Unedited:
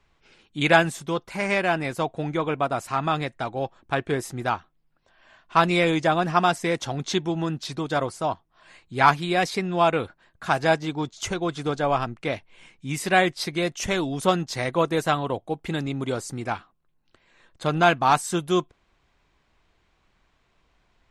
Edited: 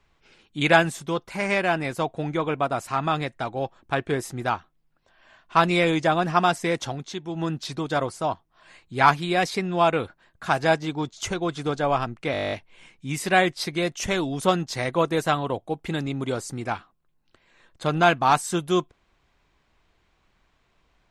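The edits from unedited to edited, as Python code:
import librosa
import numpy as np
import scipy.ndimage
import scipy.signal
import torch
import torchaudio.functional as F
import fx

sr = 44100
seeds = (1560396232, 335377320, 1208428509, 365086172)

y = fx.edit(x, sr, fx.fade_down_up(start_s=6.88, length_s=0.56, db=-9.0, fade_s=0.27, curve='qua'),
    fx.stutter(start_s=12.32, slice_s=0.02, count=11), tone=tone)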